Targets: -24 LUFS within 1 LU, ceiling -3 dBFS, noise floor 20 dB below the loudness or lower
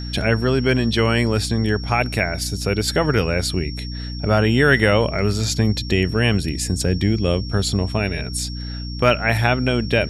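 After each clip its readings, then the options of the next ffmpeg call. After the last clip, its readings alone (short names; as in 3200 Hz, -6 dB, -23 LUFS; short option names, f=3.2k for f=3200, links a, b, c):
hum 60 Hz; harmonics up to 300 Hz; hum level -26 dBFS; steady tone 5500 Hz; tone level -35 dBFS; loudness -19.5 LUFS; peak -2.5 dBFS; loudness target -24.0 LUFS
-> -af "bandreject=f=60:t=h:w=6,bandreject=f=120:t=h:w=6,bandreject=f=180:t=h:w=6,bandreject=f=240:t=h:w=6,bandreject=f=300:t=h:w=6"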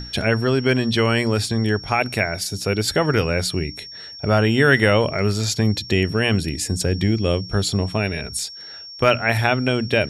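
hum none; steady tone 5500 Hz; tone level -35 dBFS
-> -af "bandreject=f=5.5k:w=30"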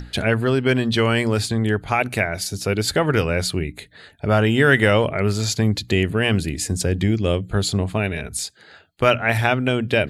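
steady tone none; loudness -20.0 LUFS; peak -2.0 dBFS; loudness target -24.0 LUFS
-> -af "volume=-4dB"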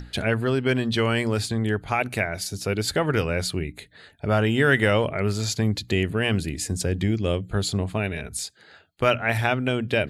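loudness -24.0 LUFS; peak -6.0 dBFS; noise floor -53 dBFS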